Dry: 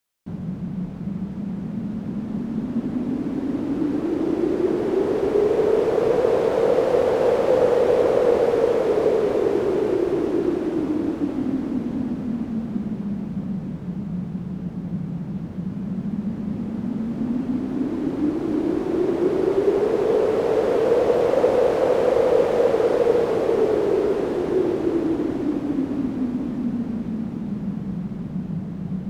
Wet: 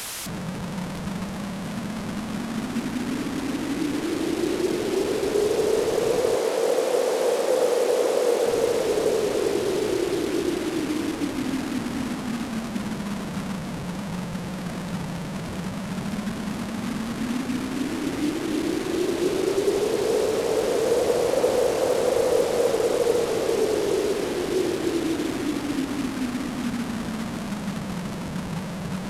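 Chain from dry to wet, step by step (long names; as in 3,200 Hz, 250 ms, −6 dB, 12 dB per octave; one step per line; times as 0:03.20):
linear delta modulator 64 kbit/s, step −22 dBFS
0:06.36–0:08.46: high-pass filter 260 Hz 12 dB per octave
level −3.5 dB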